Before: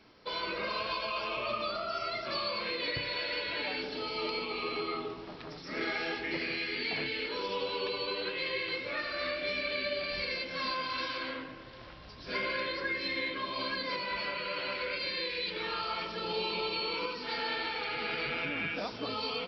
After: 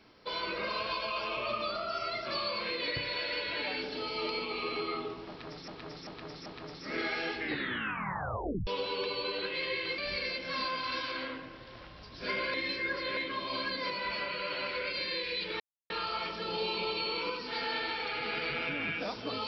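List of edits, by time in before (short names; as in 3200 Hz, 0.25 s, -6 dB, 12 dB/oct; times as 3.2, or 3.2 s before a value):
5.29–5.68 loop, 4 plays
6.23 tape stop 1.27 s
8.81–10.04 cut
12.6–13.23 reverse
15.66 insert silence 0.30 s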